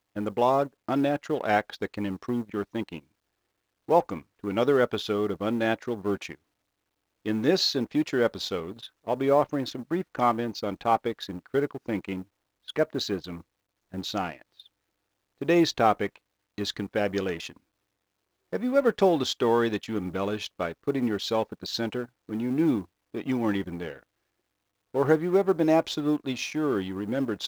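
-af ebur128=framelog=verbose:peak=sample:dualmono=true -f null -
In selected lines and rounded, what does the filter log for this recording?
Integrated loudness:
  I:         -24.4 LUFS
  Threshold: -34.9 LUFS
Loudness range:
  LRA:         3.8 LU
  Threshold: -45.5 LUFS
  LRA low:   -27.7 LUFS
  LRA high:  -23.9 LUFS
Sample peak:
  Peak:       -7.6 dBFS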